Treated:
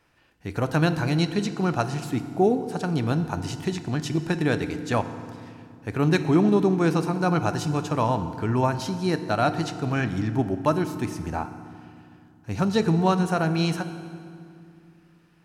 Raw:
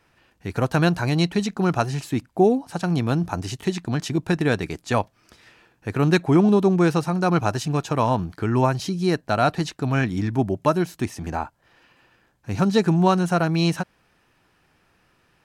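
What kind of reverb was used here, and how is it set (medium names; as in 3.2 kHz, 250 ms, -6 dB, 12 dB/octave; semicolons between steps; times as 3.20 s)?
FDN reverb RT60 2.3 s, low-frequency decay 1.55×, high-frequency decay 0.75×, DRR 9.5 dB; trim -3 dB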